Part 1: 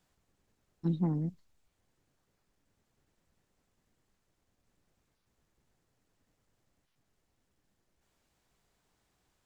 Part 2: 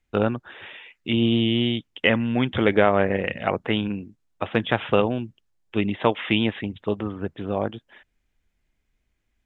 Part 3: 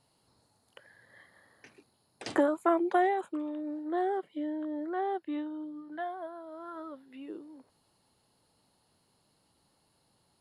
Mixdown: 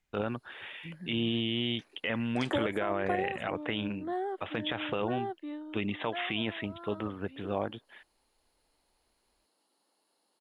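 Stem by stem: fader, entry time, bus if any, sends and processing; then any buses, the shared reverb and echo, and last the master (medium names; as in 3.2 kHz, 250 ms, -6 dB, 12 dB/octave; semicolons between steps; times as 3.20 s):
-14.0 dB, 0.00 s, no send, low-pass that closes with the level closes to 310 Hz
-5.5 dB, 0.00 s, no send, tilt shelf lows -3 dB, about 660 Hz
-3.5 dB, 0.15 s, no send, high-pass 270 Hz 24 dB/octave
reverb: none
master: peak limiter -19 dBFS, peak gain reduction 13 dB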